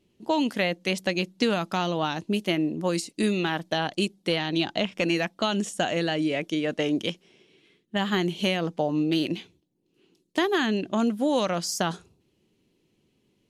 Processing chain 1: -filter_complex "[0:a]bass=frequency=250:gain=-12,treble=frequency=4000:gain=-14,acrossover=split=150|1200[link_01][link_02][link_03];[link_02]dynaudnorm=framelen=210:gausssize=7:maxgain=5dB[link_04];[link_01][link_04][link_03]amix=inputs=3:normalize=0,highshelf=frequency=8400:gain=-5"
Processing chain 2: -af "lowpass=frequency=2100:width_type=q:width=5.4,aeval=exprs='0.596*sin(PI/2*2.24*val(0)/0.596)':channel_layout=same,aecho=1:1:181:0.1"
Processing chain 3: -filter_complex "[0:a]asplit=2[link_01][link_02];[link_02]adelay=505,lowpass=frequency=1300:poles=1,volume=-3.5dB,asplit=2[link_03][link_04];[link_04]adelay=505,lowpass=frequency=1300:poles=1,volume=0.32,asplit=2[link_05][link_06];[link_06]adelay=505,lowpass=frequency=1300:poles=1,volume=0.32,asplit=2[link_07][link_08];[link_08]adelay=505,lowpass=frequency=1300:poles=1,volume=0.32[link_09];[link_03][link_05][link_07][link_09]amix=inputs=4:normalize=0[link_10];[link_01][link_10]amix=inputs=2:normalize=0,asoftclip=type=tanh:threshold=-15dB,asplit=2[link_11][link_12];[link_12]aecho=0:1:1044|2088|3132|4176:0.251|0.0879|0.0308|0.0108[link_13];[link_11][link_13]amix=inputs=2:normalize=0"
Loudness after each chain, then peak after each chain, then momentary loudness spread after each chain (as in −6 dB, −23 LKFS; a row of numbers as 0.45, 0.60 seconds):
−26.0, −14.0, −26.5 LKFS; −10.0, −3.5, −14.0 dBFS; 5, 6, 7 LU